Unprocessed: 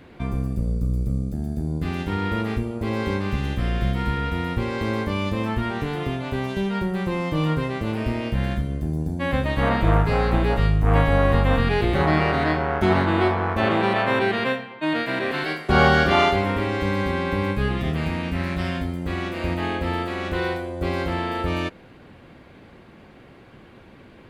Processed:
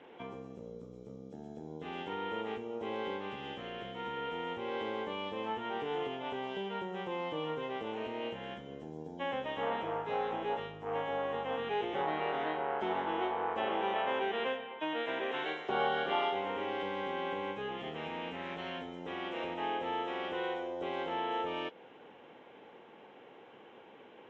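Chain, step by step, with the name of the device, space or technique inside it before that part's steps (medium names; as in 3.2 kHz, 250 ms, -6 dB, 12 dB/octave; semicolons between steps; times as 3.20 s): hearing aid with frequency lowering (knee-point frequency compression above 2.9 kHz 1.5:1; compression 2.5:1, threshold -28 dBFS, peak gain reduction 10.5 dB; cabinet simulation 290–6100 Hz, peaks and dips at 460 Hz +9 dB, 850 Hz +10 dB, 3.1 kHz +8 dB, 4.5 kHz -8 dB); trim -8.5 dB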